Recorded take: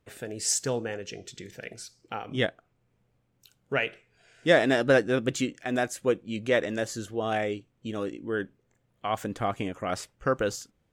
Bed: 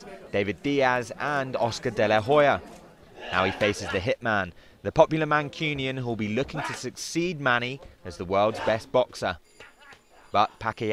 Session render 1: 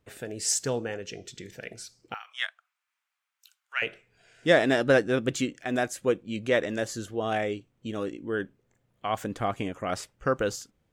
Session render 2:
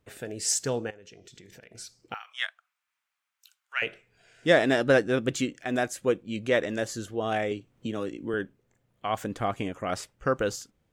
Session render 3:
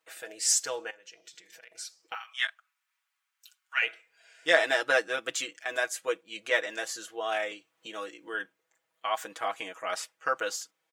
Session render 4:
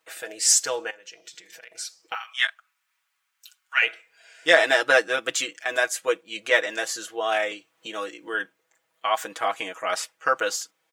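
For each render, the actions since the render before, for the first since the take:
2.14–3.82 inverse Chebyshev high-pass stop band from 330 Hz, stop band 60 dB
0.9–1.75 compressor 10:1, threshold -46 dBFS; 7.51–8.34 three-band squash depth 70%
HPF 830 Hz 12 dB/oct; comb 6.2 ms, depth 82%
gain +6.5 dB; limiter -2 dBFS, peak gain reduction 2.5 dB

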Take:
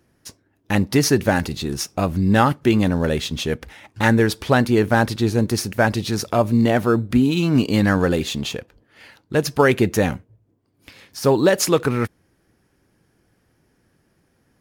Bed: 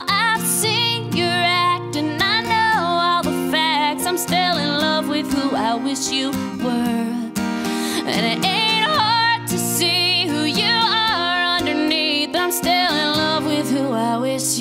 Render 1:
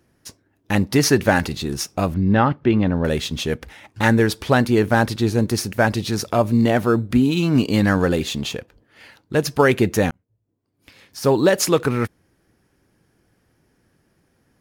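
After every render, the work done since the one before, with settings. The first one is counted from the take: 0.99–1.58 bell 1600 Hz +3.5 dB 2.9 oct; 2.14–3.05 air absorption 290 m; 10.11–11.37 fade in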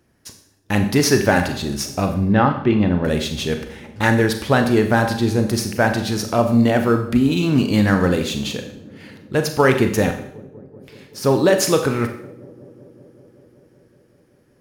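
dark delay 0.19 s, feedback 81%, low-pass 500 Hz, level -22 dB; Schroeder reverb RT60 0.64 s, combs from 30 ms, DRR 6 dB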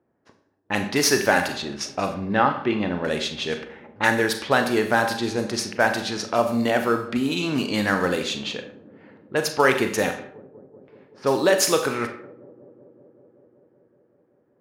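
HPF 570 Hz 6 dB/oct; low-pass opened by the level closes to 830 Hz, open at -19 dBFS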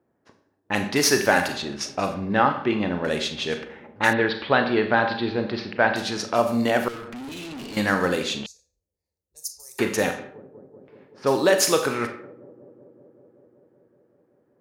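4.13–5.96 steep low-pass 4300 Hz 48 dB/oct; 6.88–7.77 tube stage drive 34 dB, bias 0.55; 8.46–9.79 inverse Chebyshev band-stop 110–3300 Hz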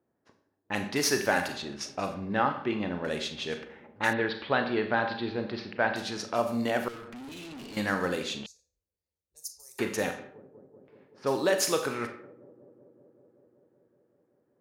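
gain -7 dB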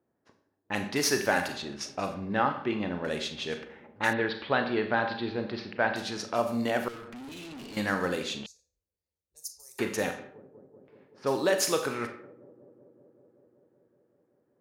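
nothing audible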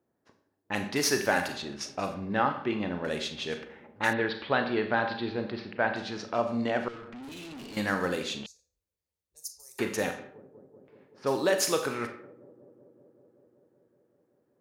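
5.5–7.23 air absorption 120 m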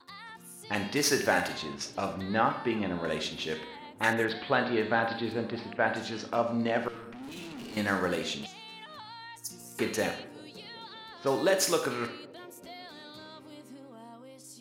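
add bed -29 dB

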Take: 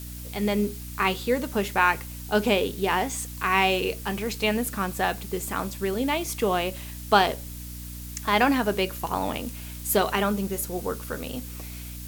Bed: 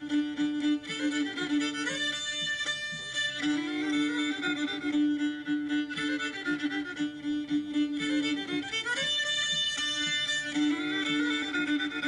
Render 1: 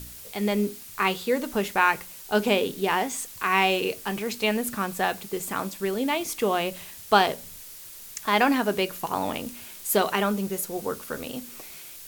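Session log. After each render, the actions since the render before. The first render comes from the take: de-hum 60 Hz, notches 5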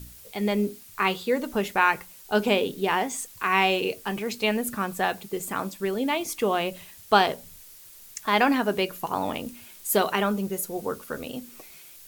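denoiser 6 dB, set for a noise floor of -43 dBFS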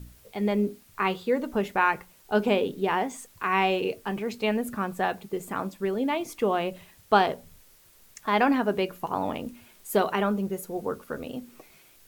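high shelf 2600 Hz -10.5 dB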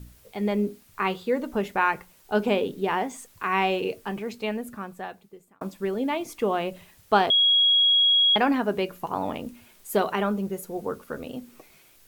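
3.97–5.61 fade out; 7.3–8.36 bleep 3310 Hz -16 dBFS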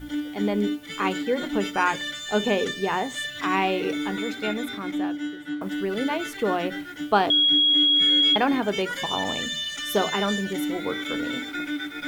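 add bed -1 dB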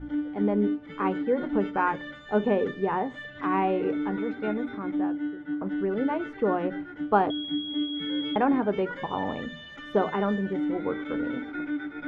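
LPF 1200 Hz 12 dB/oct; notch 680 Hz, Q 12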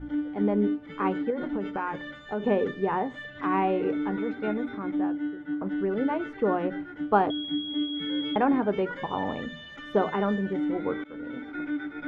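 1.3–2.46 compressor 5:1, threshold -26 dBFS; 11.04–11.67 fade in, from -16 dB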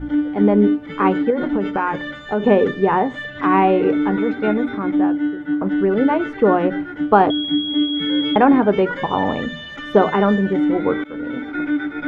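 gain +10.5 dB; limiter -1 dBFS, peak gain reduction 2.5 dB

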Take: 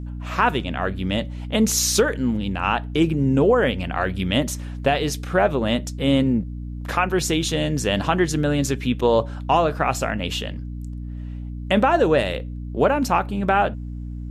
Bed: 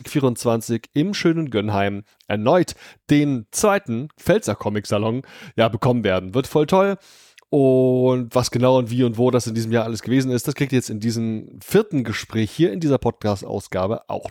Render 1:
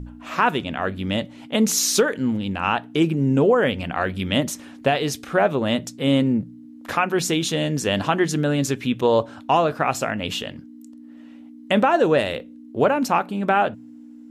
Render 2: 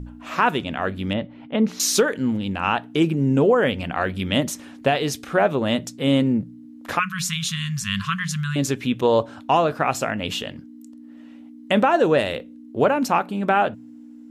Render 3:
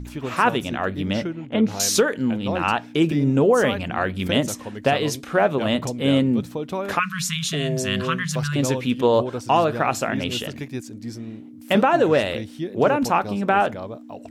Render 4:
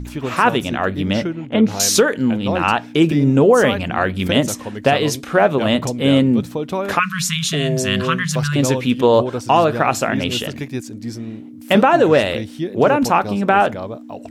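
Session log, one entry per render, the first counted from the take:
de-hum 60 Hz, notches 3
1.13–1.8 air absorption 390 m; 6.99–8.56 brick-wall FIR band-stop 220–1000 Hz
add bed -12 dB
gain +5 dB; limiter -3 dBFS, peak gain reduction 2.5 dB

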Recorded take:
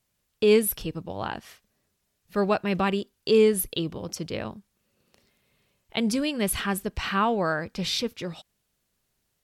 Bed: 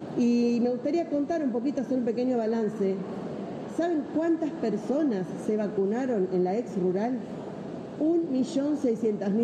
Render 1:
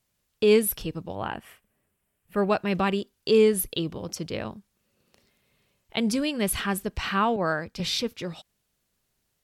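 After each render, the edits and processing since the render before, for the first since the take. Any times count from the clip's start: 1.15–2.5 band shelf 5000 Hz -11 dB 1.1 oct; 7.36–7.8 three-band expander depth 70%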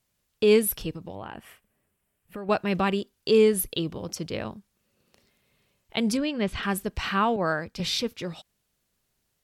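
0.93–2.49 compressor 10:1, threshold -32 dBFS; 6.17–6.63 air absorption 140 m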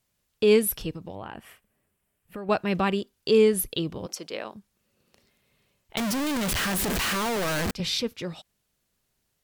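4.06–4.55 HPF 400 Hz; 5.97–7.71 infinite clipping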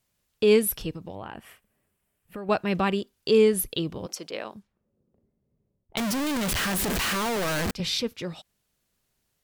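4.31–5.98 low-pass opened by the level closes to 320 Hz, open at -36 dBFS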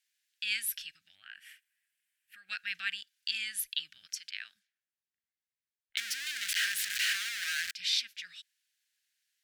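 elliptic high-pass 1600 Hz, stop band 40 dB; high shelf 10000 Hz -9.5 dB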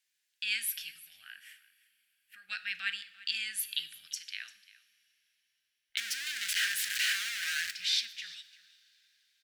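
echo 0.345 s -19.5 dB; two-slope reverb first 0.57 s, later 4.1 s, from -20 dB, DRR 10.5 dB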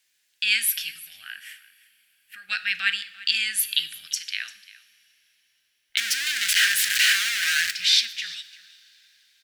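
gain +11 dB; limiter -3 dBFS, peak gain reduction 1 dB

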